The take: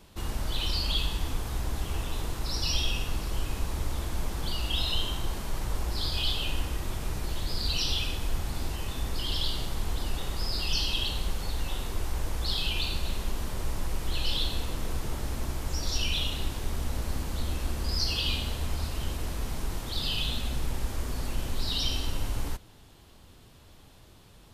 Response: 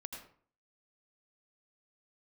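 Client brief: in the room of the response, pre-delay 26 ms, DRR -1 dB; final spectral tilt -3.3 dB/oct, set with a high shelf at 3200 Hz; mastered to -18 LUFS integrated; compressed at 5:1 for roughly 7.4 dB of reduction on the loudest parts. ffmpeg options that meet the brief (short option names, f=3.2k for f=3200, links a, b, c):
-filter_complex "[0:a]highshelf=f=3.2k:g=6.5,acompressor=threshold=-30dB:ratio=5,asplit=2[a][b];[1:a]atrim=start_sample=2205,adelay=26[c];[b][c]afir=irnorm=-1:irlink=0,volume=3.5dB[d];[a][d]amix=inputs=2:normalize=0,volume=14dB"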